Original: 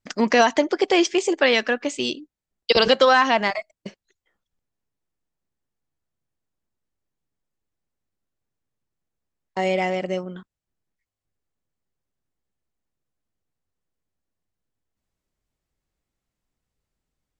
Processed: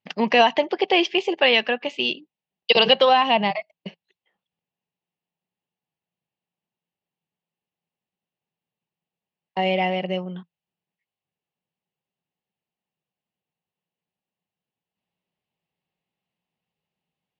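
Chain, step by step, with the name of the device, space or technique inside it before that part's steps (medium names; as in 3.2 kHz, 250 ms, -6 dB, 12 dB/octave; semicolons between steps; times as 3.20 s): 3.09–3.56 s: fifteen-band graphic EQ 160 Hz +10 dB, 1.6 kHz -7 dB, 6.3 kHz -4 dB; kitchen radio (cabinet simulation 170–4200 Hz, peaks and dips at 170 Hz +9 dB, 290 Hz -7 dB, 820 Hz +6 dB, 1.4 kHz -8 dB, 2.8 kHz +9 dB); trim -1 dB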